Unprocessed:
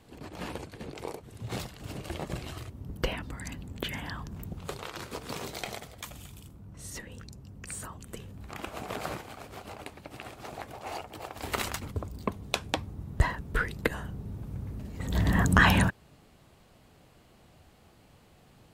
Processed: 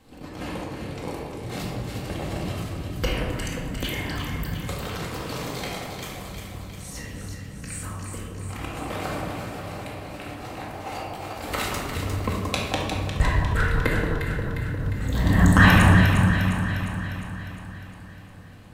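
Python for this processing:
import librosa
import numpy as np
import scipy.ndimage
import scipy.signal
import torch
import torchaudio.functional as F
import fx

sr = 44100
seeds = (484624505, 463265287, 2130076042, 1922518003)

y = fx.high_shelf(x, sr, hz=5100.0, db=5.0, at=(2.55, 4.99))
y = fx.echo_alternate(y, sr, ms=177, hz=1300.0, feedback_pct=77, wet_db=-4.0)
y = fx.room_shoebox(y, sr, seeds[0], volume_m3=720.0, walls='mixed', distance_m=2.1)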